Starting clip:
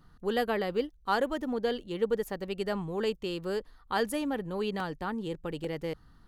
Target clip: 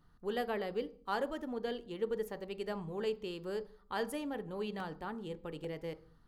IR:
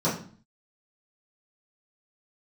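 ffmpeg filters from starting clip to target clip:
-filter_complex "[0:a]asplit=2[link_01][link_02];[1:a]atrim=start_sample=2205,asetrate=38367,aresample=44100,lowshelf=frequency=230:gain=-12[link_03];[link_02][link_03]afir=irnorm=-1:irlink=0,volume=-23.5dB[link_04];[link_01][link_04]amix=inputs=2:normalize=0,volume=-7.5dB"

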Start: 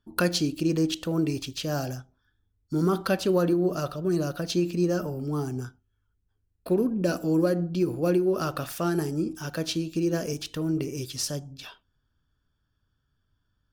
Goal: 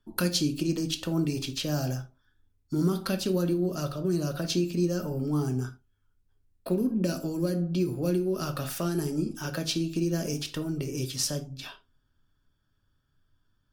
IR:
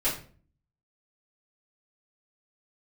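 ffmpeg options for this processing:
-filter_complex "[0:a]acrossover=split=260|3000[link_01][link_02][link_03];[link_02]acompressor=threshold=-33dB:ratio=8[link_04];[link_01][link_04][link_03]amix=inputs=3:normalize=0,asplit=2[link_05][link_06];[1:a]atrim=start_sample=2205,afade=type=out:start_time=0.14:duration=0.01,atrim=end_sample=6615[link_07];[link_06][link_07]afir=irnorm=-1:irlink=0,volume=-14.5dB[link_08];[link_05][link_08]amix=inputs=2:normalize=0" -ar 44100 -c:a libmp3lame -b:a 80k

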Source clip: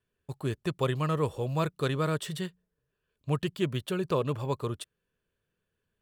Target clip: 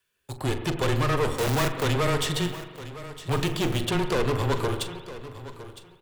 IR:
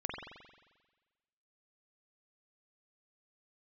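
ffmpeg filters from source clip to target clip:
-filter_complex "[0:a]acrossover=split=8200[link_01][link_02];[link_02]acompressor=threshold=-59dB:ratio=4:attack=1:release=60[link_03];[link_01][link_03]amix=inputs=2:normalize=0,tiltshelf=frequency=870:gain=-9.5,bandreject=frequency=50:width_type=h:width=6,bandreject=frequency=100:width_type=h:width=6,bandreject=frequency=150:width_type=h:width=6,bandreject=frequency=200:width_type=h:width=6,bandreject=frequency=250:width_type=h:width=6,bandreject=frequency=300:width_type=h:width=6,bandreject=frequency=350:width_type=h:width=6,bandreject=frequency=400:width_type=h:width=6,acrossover=split=790[link_04][link_05];[link_04]dynaudnorm=framelen=130:gausssize=5:maxgain=12dB[link_06];[link_06][link_05]amix=inputs=2:normalize=0,asettb=1/sr,asplit=3[link_07][link_08][link_09];[link_07]atrim=end=1.364[link_10];[link_08]atrim=start=1.36:end=1.83,asetpts=PTS-STARTPTS,afade=type=in:duration=0.004:curve=qsin,afade=type=out:start_time=0.466:duration=0.004:curve=qsin,acrusher=bits=6:dc=4:mix=0:aa=0.000001[link_11];[link_09]atrim=start=1.826[link_12];[link_10][link_11]acrossfade=duration=0.004:curve1=hsin:curve2=qsin[link_13];[link_13][link_12]acrossfade=duration=0.004:curve1=qsin:curve2=hsin,aeval=exprs='(tanh(31.6*val(0)+0.75)-tanh(0.75))/31.6':channel_layout=same,asettb=1/sr,asplit=3[link_14][link_15][link_16];[link_14]atrim=end=3.314[link_17];[link_15]atrim=start=3.31:end=3.86,asetpts=PTS-STARTPTS,afade=type=in:duration=0.004:curve=qsin,afade=type=out:start_time=0.546:duration=0.004:curve=qsin,acrusher=bits=5:mode=log:mix=0:aa=0.000001[link_18];[link_16]atrim=start=3.856[link_19];[link_17][link_18]acrossfade=duration=0.004:curve1=hsin:curve2=qsin[link_20];[link_20][link_19]acrossfade=duration=0.004:curve1=qsin:curve2=hsin,afreqshift=-13,aecho=1:1:960|1920:0.178|0.032,asplit=2[link_21][link_22];[1:a]atrim=start_sample=2205,highshelf=frequency=9500:gain=-8.5,adelay=42[link_23];[link_22][link_23]afir=irnorm=-1:irlink=0,volume=-9.5dB[link_24];[link_21][link_24]amix=inputs=2:normalize=0,volume=8dB"

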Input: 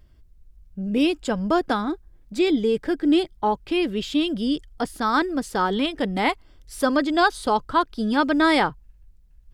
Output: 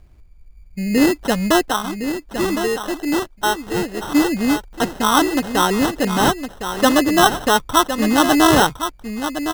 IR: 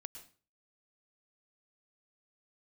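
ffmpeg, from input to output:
-filter_complex "[0:a]asettb=1/sr,asplit=3[link_01][link_02][link_03];[link_01]atrim=end=1.634[link_04];[link_02]atrim=start=1.63:end=4.03,asetpts=PTS-STARTPTS,afade=type=in:duration=0.004:curve=qsin,afade=type=out:start_time=2.396:duration=0.004:curve=qsin,equalizer=frequency=140:width=0.39:gain=-11.5[link_05];[link_03]atrim=start=4.026[link_06];[link_04][link_05]acrossfade=duration=0.004:curve1=hsin:curve2=qsin[link_07];[link_07][link_06]acrossfade=duration=0.004:curve1=qsin:curve2=hsin,acrusher=samples=19:mix=1:aa=0.000001,aecho=1:1:1061:0.355,volume=5.5dB"

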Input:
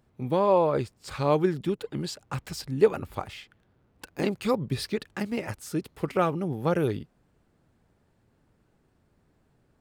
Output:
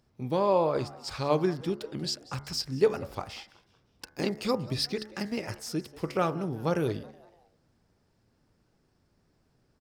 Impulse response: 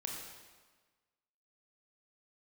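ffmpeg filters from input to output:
-filter_complex "[0:a]equalizer=frequency=5200:width=2.7:gain=11.5,bandreject=frequency=71.3:width_type=h:width=4,bandreject=frequency=142.6:width_type=h:width=4,bandreject=frequency=213.9:width_type=h:width=4,bandreject=frequency=285.2:width_type=h:width=4,bandreject=frequency=356.5:width_type=h:width=4,bandreject=frequency=427.8:width_type=h:width=4,bandreject=frequency=499.1:width_type=h:width=4,bandreject=frequency=570.4:width_type=h:width=4,bandreject=frequency=641.7:width_type=h:width=4,bandreject=frequency=713:width_type=h:width=4,bandreject=frequency=784.3:width_type=h:width=4,bandreject=frequency=855.6:width_type=h:width=4,bandreject=frequency=926.9:width_type=h:width=4,bandreject=frequency=998.2:width_type=h:width=4,bandreject=frequency=1069.5:width_type=h:width=4,bandreject=frequency=1140.8:width_type=h:width=4,bandreject=frequency=1212.1:width_type=h:width=4,bandreject=frequency=1283.4:width_type=h:width=4,bandreject=frequency=1354.7:width_type=h:width=4,bandreject=frequency=1426:width_type=h:width=4,bandreject=frequency=1497.3:width_type=h:width=4,bandreject=frequency=1568.6:width_type=h:width=4,bandreject=frequency=1639.9:width_type=h:width=4,bandreject=frequency=1711.2:width_type=h:width=4,bandreject=frequency=1782.5:width_type=h:width=4,bandreject=frequency=1853.8:width_type=h:width=4,bandreject=frequency=1925.1:width_type=h:width=4,bandreject=frequency=1996.4:width_type=h:width=4,bandreject=frequency=2067.7:width_type=h:width=4,bandreject=frequency=2139:width_type=h:width=4,asplit=4[link_01][link_02][link_03][link_04];[link_02]adelay=186,afreqshift=120,volume=-21dB[link_05];[link_03]adelay=372,afreqshift=240,volume=-28.7dB[link_06];[link_04]adelay=558,afreqshift=360,volume=-36.5dB[link_07];[link_01][link_05][link_06][link_07]amix=inputs=4:normalize=0,volume=-2.5dB"

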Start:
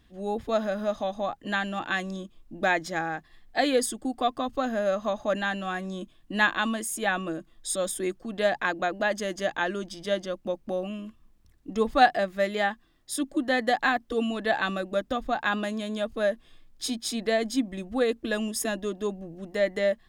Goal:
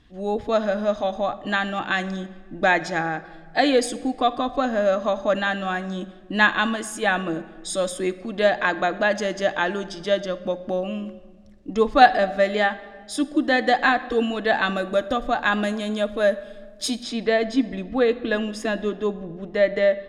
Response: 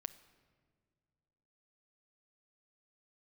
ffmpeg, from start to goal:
-filter_complex "[0:a]asetnsamples=nb_out_samples=441:pad=0,asendcmd='14.76 lowpass f 11000;17.03 lowpass f 3700',lowpass=6600[link_01];[1:a]atrim=start_sample=2205[link_02];[link_01][link_02]afir=irnorm=-1:irlink=0,volume=8.5dB"

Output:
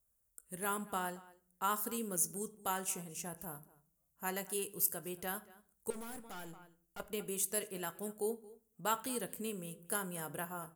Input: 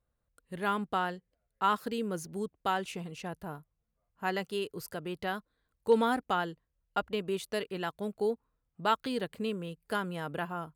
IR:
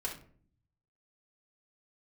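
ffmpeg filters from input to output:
-filter_complex "[0:a]aexciter=amount=7.4:drive=8.2:freq=6100,asplit=2[link_01][link_02];[link_02]adelay=227.4,volume=-20dB,highshelf=frequency=4000:gain=-5.12[link_03];[link_01][link_03]amix=inputs=2:normalize=0,asettb=1/sr,asplit=3[link_04][link_05][link_06];[link_04]atrim=end=5.904[link_07];[link_05]atrim=start=5.9:end=7,asetpts=PTS-STARTPTS,afade=type=in:duration=0.004:curve=qsin,afade=type=out:start_time=1.096:duration=0.004:curve=qsin,aeval=exprs='(tanh(79.4*val(0)+0.4)-tanh(0.4))/79.4':channel_layout=same[link_08];[link_06]atrim=start=6.996[link_09];[link_07][link_08]acrossfade=duration=0.004:curve1=hsin:curve2=qsin[link_10];[link_10][link_09]acrossfade=duration=0.004:curve1=qsin:curve2=hsin,asplit=2[link_11][link_12];[1:a]atrim=start_sample=2205,adelay=17[link_13];[link_12][link_13]afir=irnorm=-1:irlink=0,volume=-13.5dB[link_14];[link_11][link_14]amix=inputs=2:normalize=0,volume=-7.5dB"

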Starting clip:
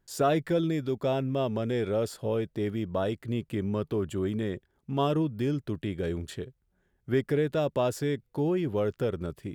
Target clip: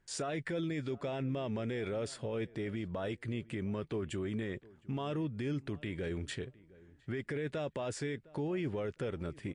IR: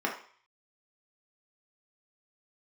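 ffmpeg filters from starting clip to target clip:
-filter_complex "[0:a]equalizer=frequency=2100:width_type=o:width=0.83:gain=8,asplit=2[link_01][link_02];[link_02]acompressor=threshold=-34dB:ratio=6,volume=-1dB[link_03];[link_01][link_03]amix=inputs=2:normalize=0,alimiter=limit=-22.5dB:level=0:latency=1:release=24,asplit=2[link_04][link_05];[link_05]adelay=709,lowpass=frequency=1700:poles=1,volume=-21.5dB,asplit=2[link_06][link_07];[link_07]adelay=709,lowpass=frequency=1700:poles=1,volume=0.22[link_08];[link_04][link_06][link_08]amix=inputs=3:normalize=0,volume=-6dB" -ar 22050 -c:a libmp3lame -b:a 48k

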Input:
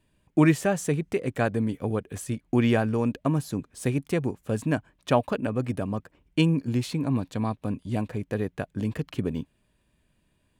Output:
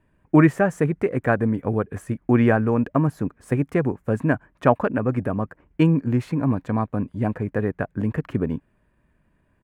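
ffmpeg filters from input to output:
ffmpeg -i in.wav -af "atempo=1.1,highshelf=frequency=2500:width_type=q:width=1.5:gain=-13,volume=4.5dB" out.wav

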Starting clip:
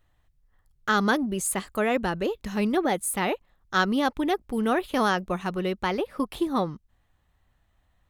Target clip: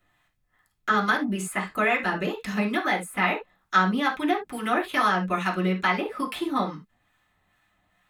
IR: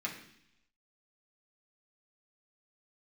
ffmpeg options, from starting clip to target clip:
-filter_complex "[0:a]acrossover=split=900|2200[link_01][link_02][link_03];[link_01]acompressor=threshold=-29dB:ratio=4[link_04];[link_02]acompressor=threshold=-29dB:ratio=4[link_05];[link_03]acompressor=threshold=-43dB:ratio=4[link_06];[link_04][link_05][link_06]amix=inputs=3:normalize=0,acrossover=split=860[link_07][link_08];[link_07]aeval=exprs='val(0)*(1-0.5/2+0.5/2*cos(2*PI*2.3*n/s))':channel_layout=same[link_09];[link_08]aeval=exprs='val(0)*(1-0.5/2-0.5/2*cos(2*PI*2.3*n/s))':channel_layout=same[link_10];[link_09][link_10]amix=inputs=2:normalize=0,lowshelf=frequency=380:gain=-8.5[link_11];[1:a]atrim=start_sample=2205,afade=type=out:start_time=0.13:duration=0.01,atrim=end_sample=6174[link_12];[link_11][link_12]afir=irnorm=-1:irlink=0,volume=8dB"

